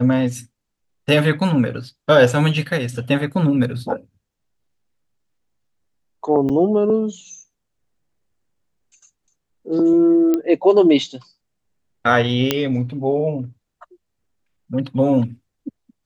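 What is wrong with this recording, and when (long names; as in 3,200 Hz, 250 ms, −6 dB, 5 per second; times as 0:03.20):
0:06.49–0:06.50: drop-out 6.8 ms
0:10.34: click −8 dBFS
0:12.51: click −1 dBFS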